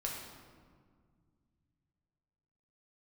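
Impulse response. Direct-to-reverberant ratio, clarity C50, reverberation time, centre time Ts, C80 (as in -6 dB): -2.5 dB, 2.0 dB, 1.9 s, 69 ms, 3.5 dB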